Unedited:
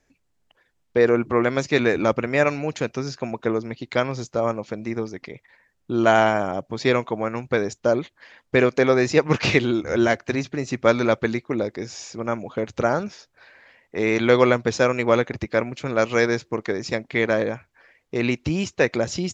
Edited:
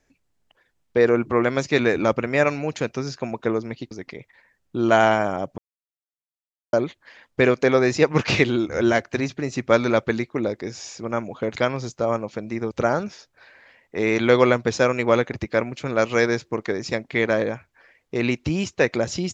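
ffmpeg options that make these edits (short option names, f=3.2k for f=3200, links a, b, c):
-filter_complex "[0:a]asplit=6[a][b][c][d][e][f];[a]atrim=end=3.912[g];[b]atrim=start=5.058:end=6.73,asetpts=PTS-STARTPTS,afade=t=out:st=1.668:d=0.004:c=hsin[h];[c]atrim=start=6.73:end=7.88,asetpts=PTS-STARTPTS,volume=0[i];[d]atrim=start=7.88:end=12.712,asetpts=PTS-STARTPTS,afade=t=in:d=0.004:c=hsin[j];[e]atrim=start=3.908:end=5.062[k];[f]atrim=start=12.708[l];[h][i][j]concat=n=3:v=0:a=1[m];[g][m]acrossfade=d=0.004:c1=hsin:c2=hsin[n];[n][k]acrossfade=d=0.004:c1=hsin:c2=hsin[o];[o][l]acrossfade=d=0.004:c1=hsin:c2=hsin"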